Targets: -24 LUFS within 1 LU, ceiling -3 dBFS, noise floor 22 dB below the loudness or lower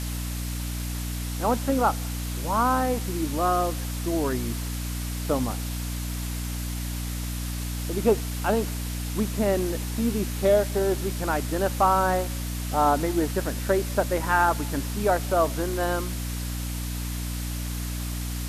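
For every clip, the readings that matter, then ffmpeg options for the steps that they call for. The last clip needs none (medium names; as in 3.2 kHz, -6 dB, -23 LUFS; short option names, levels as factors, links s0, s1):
hum 60 Hz; highest harmonic 300 Hz; hum level -28 dBFS; noise floor -31 dBFS; noise floor target -49 dBFS; loudness -26.5 LUFS; peak level -9.0 dBFS; loudness target -24.0 LUFS
-> -af "bandreject=f=60:t=h:w=4,bandreject=f=120:t=h:w=4,bandreject=f=180:t=h:w=4,bandreject=f=240:t=h:w=4,bandreject=f=300:t=h:w=4"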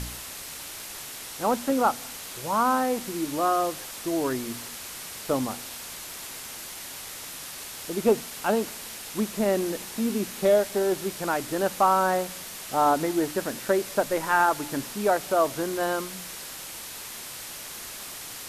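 hum not found; noise floor -39 dBFS; noise floor target -50 dBFS
-> -af "afftdn=nr=11:nf=-39"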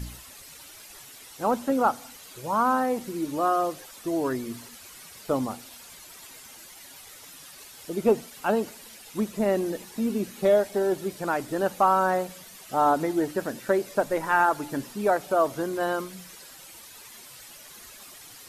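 noise floor -47 dBFS; noise floor target -49 dBFS
-> -af "afftdn=nr=6:nf=-47"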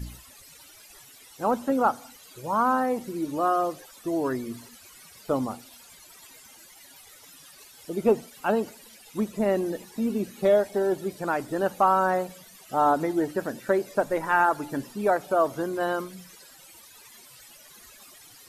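noise floor -51 dBFS; loudness -26.0 LUFS; peak level -10.0 dBFS; loudness target -24.0 LUFS
-> -af "volume=1.26"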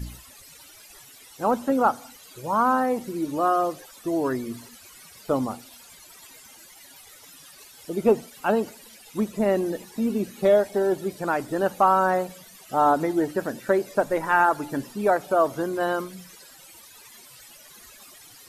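loudness -24.0 LUFS; peak level -8.0 dBFS; noise floor -49 dBFS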